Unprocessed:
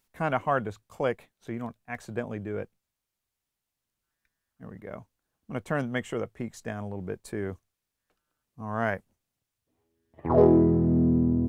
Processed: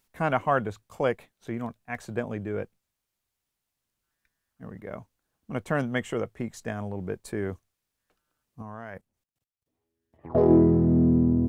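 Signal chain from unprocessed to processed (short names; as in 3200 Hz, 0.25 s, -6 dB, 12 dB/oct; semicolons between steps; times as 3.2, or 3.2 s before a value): 8.62–10.5 level quantiser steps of 21 dB; gain +2 dB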